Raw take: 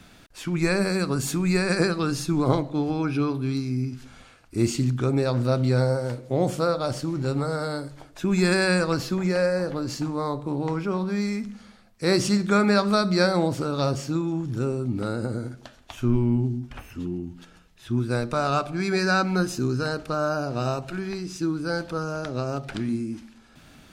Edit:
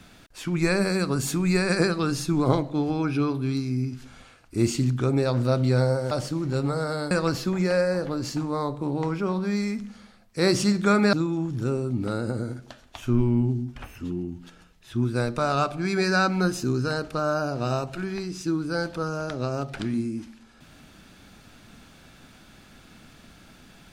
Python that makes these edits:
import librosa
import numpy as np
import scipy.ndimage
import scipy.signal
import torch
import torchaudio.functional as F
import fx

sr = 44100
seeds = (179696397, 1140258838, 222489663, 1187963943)

y = fx.edit(x, sr, fx.cut(start_s=6.11, length_s=0.72),
    fx.cut(start_s=7.83, length_s=0.93),
    fx.cut(start_s=12.78, length_s=1.3), tone=tone)